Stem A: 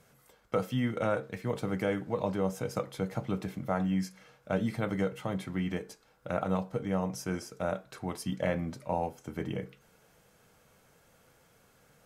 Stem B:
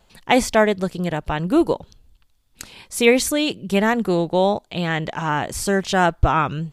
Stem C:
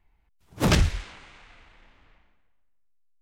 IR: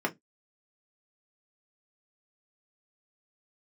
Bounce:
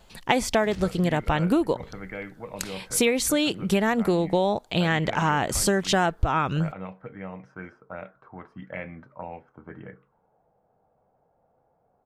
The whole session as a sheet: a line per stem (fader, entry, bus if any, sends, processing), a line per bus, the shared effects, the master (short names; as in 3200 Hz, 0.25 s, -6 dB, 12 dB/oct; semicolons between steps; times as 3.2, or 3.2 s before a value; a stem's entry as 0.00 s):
-7.5 dB, 0.30 s, no send, envelope low-pass 740–2300 Hz up, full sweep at -27.5 dBFS
+3.0 dB, 0.00 s, no send, dry
-15.0 dB, 0.00 s, no send, dry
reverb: off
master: compressor 12:1, threshold -18 dBFS, peak gain reduction 13 dB